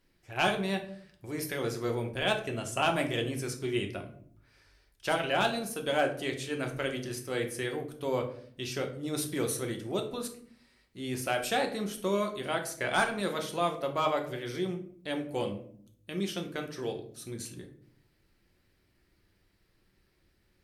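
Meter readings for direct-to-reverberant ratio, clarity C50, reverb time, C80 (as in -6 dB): 3.0 dB, 10.5 dB, 0.55 s, 14.0 dB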